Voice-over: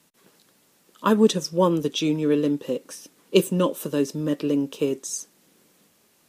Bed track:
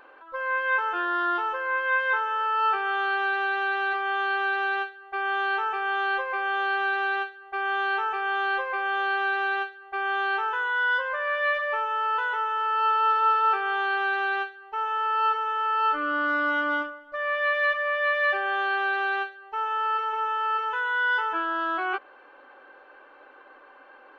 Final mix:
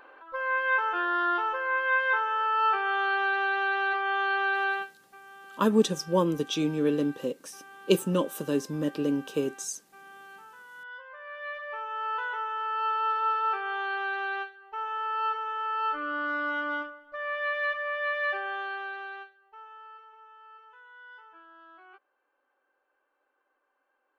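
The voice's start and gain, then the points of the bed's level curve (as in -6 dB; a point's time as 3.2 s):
4.55 s, -4.5 dB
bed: 4.7 s -1 dB
5.21 s -22.5 dB
10.67 s -22.5 dB
12.09 s -5.5 dB
18.37 s -5.5 dB
20.18 s -25.5 dB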